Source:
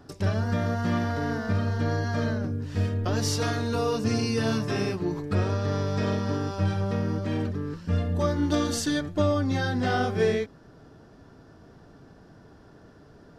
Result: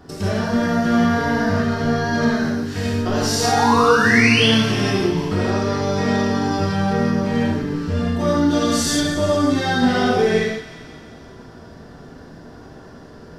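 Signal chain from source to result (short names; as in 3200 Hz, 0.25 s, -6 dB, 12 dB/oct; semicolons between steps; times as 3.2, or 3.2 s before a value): 2.29–2.86 tilt +1.5 dB/oct; in parallel at +3 dB: limiter -24 dBFS, peak gain reduction 10.5 dB; 3.44–4.47 on the sum: painted sound rise 690–3500 Hz -22 dBFS; thinning echo 0.177 s, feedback 67%, high-pass 990 Hz, level -12.5 dB; non-linear reverb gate 0.19 s flat, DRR -6.5 dB; gain -3 dB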